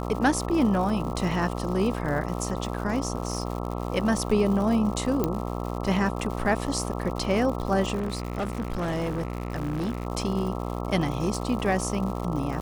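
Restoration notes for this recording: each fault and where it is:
buzz 60 Hz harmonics 22 -31 dBFS
crackle 170 per s -33 dBFS
1.31 s: dropout 3.5 ms
5.24 s: pop -11 dBFS
7.95–10.07 s: clipped -24.5 dBFS

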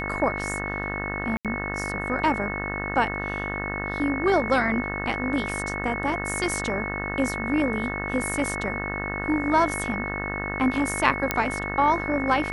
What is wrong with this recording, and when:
buzz 50 Hz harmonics 38 -32 dBFS
whine 2.2 kHz -31 dBFS
1.37–1.45 s: dropout 77 ms
11.31 s: pop -6 dBFS

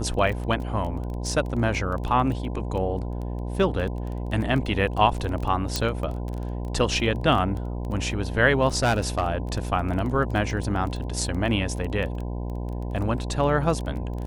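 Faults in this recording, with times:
buzz 60 Hz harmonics 17 -30 dBFS
crackle 14 per s -30 dBFS
5.76 s: pop -9 dBFS
8.76–9.30 s: clipped -16.5 dBFS

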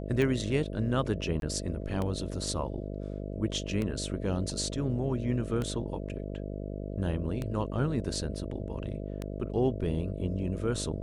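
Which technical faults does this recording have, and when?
buzz 50 Hz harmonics 13 -37 dBFS
tick 33 1/3 rpm -20 dBFS
1.40–1.42 s: dropout 22 ms

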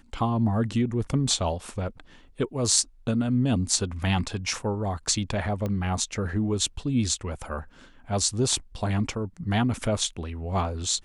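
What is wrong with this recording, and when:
5.66 s: pop -18 dBFS

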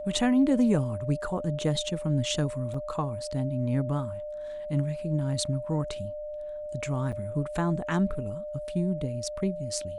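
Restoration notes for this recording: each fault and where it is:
whine 600 Hz -34 dBFS
2.74 s: dropout 3.9 ms
7.12–7.13 s: dropout 6.8 ms

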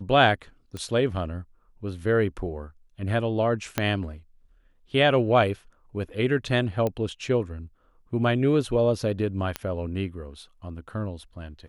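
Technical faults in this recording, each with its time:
0.77 s: pop -22 dBFS
3.78 s: pop -8 dBFS
6.87 s: pop -15 dBFS
9.56 s: pop -12 dBFS

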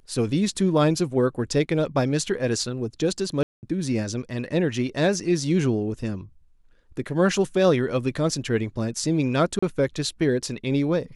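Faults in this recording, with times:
3.43–3.63 s: dropout 199 ms
9.59–9.62 s: dropout 35 ms

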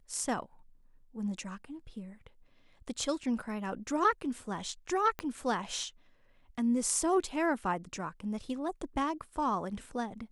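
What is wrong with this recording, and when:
5.19 s: pop -21 dBFS

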